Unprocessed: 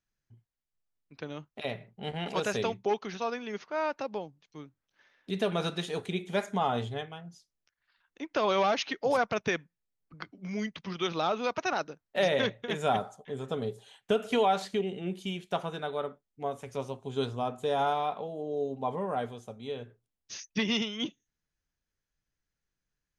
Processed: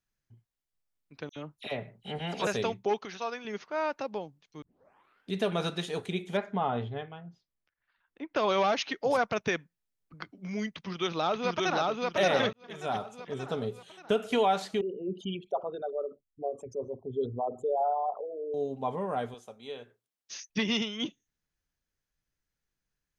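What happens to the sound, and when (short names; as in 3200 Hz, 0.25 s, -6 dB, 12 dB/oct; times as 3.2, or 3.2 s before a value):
1.29–2.47 dispersion lows, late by 70 ms, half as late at 3000 Hz
3.05–3.45 low shelf 350 Hz -10 dB
4.62 tape start 0.69 s
6.37–8.36 air absorption 320 m
10.75–11.87 echo throw 0.58 s, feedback 45%, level -1 dB
12.53–13.23 fade in
14.81–18.54 formant sharpening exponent 3
19.34–20.5 HPF 520 Hz 6 dB/oct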